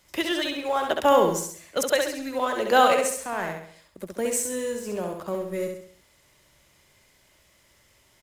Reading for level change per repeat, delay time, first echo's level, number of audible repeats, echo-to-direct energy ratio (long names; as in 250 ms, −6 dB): −7.0 dB, 67 ms, −4.5 dB, 5, −3.5 dB